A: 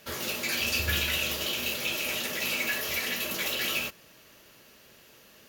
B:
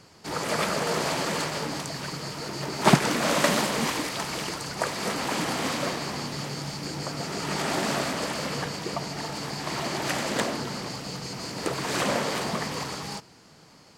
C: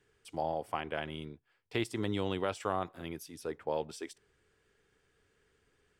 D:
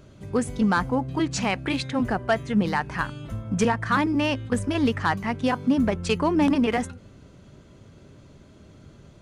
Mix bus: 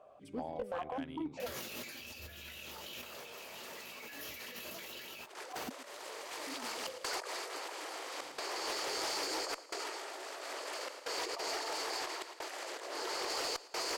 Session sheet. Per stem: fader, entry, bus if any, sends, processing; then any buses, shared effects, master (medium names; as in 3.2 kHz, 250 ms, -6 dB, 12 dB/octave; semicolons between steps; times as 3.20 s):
-0.5 dB, 1.40 s, no send, no echo send, none
-4.5 dB, 2.40 s, no send, echo send -22 dB, steep high-pass 350 Hz 48 dB/octave; trance gate "xxxxx..xxxxxxxx" 168 bpm -60 dB
-16.5 dB, 0.00 s, no send, no echo send, none
-10.5 dB, 0.00 s, no send, no echo send, compression 6:1, threshold -26 dBFS, peak gain reduction 9.5 dB; high-order bell 750 Hz +12.5 dB; stepped vowel filter 5.1 Hz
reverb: none
echo: feedback delay 113 ms, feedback 54%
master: compressor with a negative ratio -43 dBFS, ratio -1; one-sided clip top -33 dBFS